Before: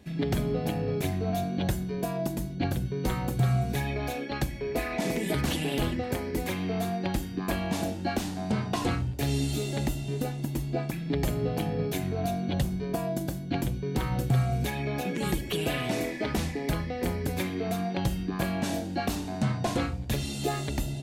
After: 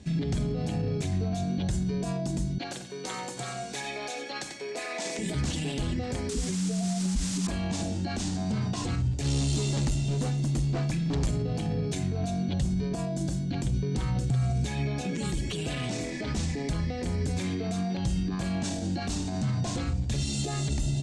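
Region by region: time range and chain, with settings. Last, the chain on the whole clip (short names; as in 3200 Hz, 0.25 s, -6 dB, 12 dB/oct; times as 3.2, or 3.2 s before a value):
2.58–5.19 HPF 520 Hz + feedback echo 91 ms, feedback 37%, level -11.5 dB
6.29–7.47 spectral contrast raised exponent 2.1 + comb 4.6 ms, depth 67% + requantised 6-bit, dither triangular
9.22–11.28 notch 7800 Hz, Q 24 + hard clip -30 dBFS
whole clip: limiter -27 dBFS; steep low-pass 8400 Hz 36 dB/oct; tone controls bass +8 dB, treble +11 dB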